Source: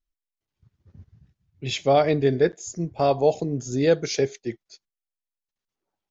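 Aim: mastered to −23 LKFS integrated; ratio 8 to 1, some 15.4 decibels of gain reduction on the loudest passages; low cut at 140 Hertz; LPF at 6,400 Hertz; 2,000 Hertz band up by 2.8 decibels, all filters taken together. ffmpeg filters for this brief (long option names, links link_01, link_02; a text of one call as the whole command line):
ffmpeg -i in.wav -af "highpass=140,lowpass=6400,equalizer=frequency=2000:width_type=o:gain=3.5,acompressor=threshold=-30dB:ratio=8,volume=12dB" out.wav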